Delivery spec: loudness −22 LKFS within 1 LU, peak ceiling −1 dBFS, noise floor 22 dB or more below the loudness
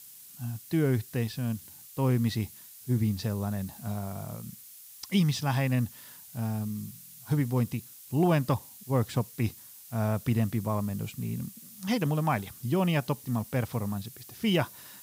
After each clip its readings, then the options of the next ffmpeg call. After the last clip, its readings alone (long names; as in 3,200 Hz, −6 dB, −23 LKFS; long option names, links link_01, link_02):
background noise floor −50 dBFS; target noise floor −53 dBFS; integrated loudness −30.5 LKFS; sample peak −15.0 dBFS; target loudness −22.0 LKFS
→ -af "afftdn=noise_reduction=6:noise_floor=-50"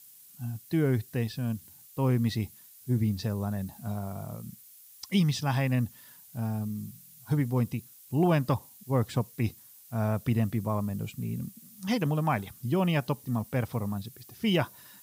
background noise floor −54 dBFS; integrated loudness −30.5 LKFS; sample peak −15.0 dBFS; target loudness −22.0 LKFS
→ -af "volume=8.5dB"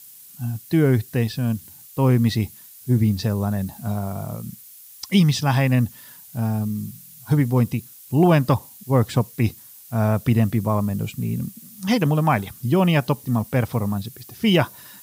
integrated loudness −22.0 LKFS; sample peak −6.5 dBFS; background noise floor −45 dBFS